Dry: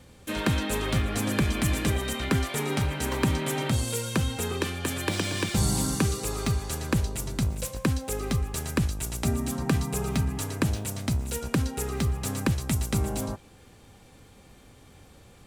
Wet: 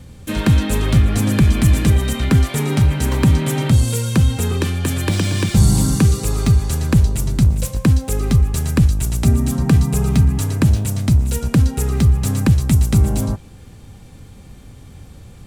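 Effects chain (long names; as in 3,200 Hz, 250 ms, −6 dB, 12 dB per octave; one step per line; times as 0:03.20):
bass and treble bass +11 dB, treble +2 dB
in parallel at −7 dB: soft clipping −15.5 dBFS, distortion −12 dB
on the sum: level +1.5 dB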